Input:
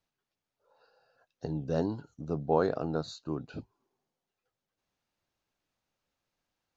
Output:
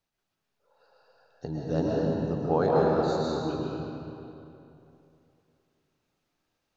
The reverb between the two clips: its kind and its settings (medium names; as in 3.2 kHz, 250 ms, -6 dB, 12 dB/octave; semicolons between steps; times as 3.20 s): algorithmic reverb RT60 2.9 s, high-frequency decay 0.75×, pre-delay 85 ms, DRR -4.5 dB